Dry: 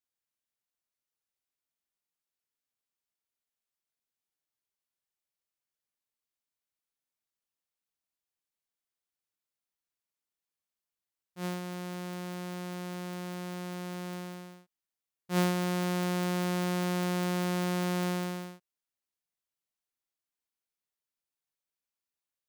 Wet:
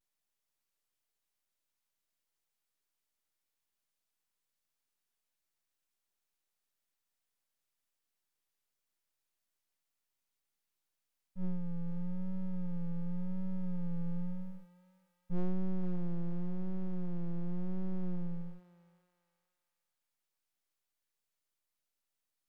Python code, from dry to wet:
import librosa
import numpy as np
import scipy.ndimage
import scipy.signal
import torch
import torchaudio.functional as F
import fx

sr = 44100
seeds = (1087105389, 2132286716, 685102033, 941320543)

y = np.abs(x)
y = fx.vibrato(y, sr, rate_hz=0.91, depth_cents=69.0)
y = 10.0 ** (-29.5 / 20.0) * np.tanh(y / 10.0 ** (-29.5 / 20.0))
y = fx.rider(y, sr, range_db=10, speed_s=2.0)
y = fx.echo_thinned(y, sr, ms=473, feedback_pct=46, hz=1100.0, wet_db=-8.0)
y = y * 10.0 ** (4.0 / 20.0)